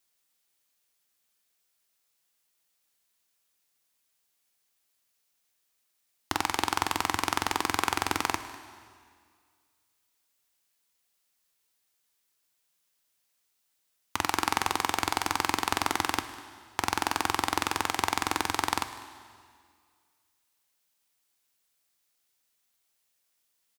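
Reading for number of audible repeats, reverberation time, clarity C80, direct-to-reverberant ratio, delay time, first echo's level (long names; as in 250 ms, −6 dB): 1, 2.0 s, 12.0 dB, 9.5 dB, 199 ms, −19.5 dB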